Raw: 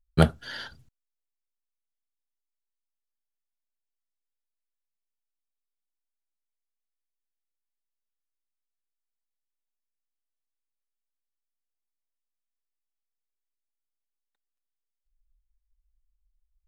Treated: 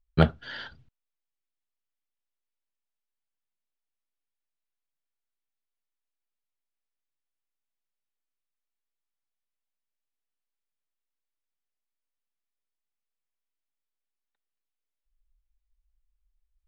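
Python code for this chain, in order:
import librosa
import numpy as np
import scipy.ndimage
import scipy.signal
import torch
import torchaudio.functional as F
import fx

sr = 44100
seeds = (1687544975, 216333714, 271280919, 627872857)

y = scipy.signal.sosfilt(scipy.signal.cheby1(2, 1.0, 3200.0, 'lowpass', fs=sr, output='sos'), x)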